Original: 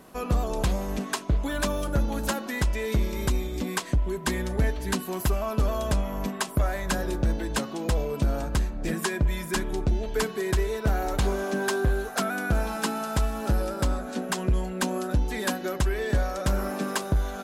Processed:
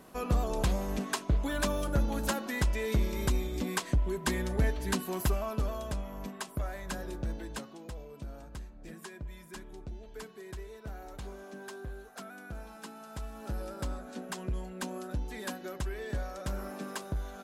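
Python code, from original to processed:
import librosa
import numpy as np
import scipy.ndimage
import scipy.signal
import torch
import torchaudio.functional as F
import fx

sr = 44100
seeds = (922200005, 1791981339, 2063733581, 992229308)

y = fx.gain(x, sr, db=fx.line((5.25, -3.5), (5.9, -10.5), (7.45, -10.5), (7.94, -18.0), (12.96, -18.0), (13.7, -10.5)))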